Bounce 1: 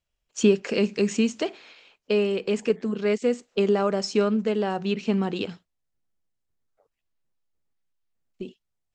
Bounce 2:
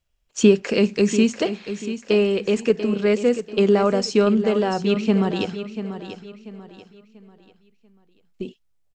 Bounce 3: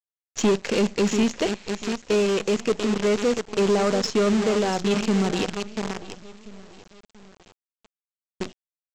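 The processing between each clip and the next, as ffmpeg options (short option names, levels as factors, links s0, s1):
-filter_complex "[0:a]lowshelf=f=91:g=6.5,asplit=2[s0][s1];[s1]aecho=0:1:689|1378|2067|2756:0.282|0.0986|0.0345|0.0121[s2];[s0][s2]amix=inputs=2:normalize=0,volume=1.58"
-af "aresample=16000,acrusher=bits=5:dc=4:mix=0:aa=0.000001,aresample=44100,asoftclip=type=tanh:threshold=0.178"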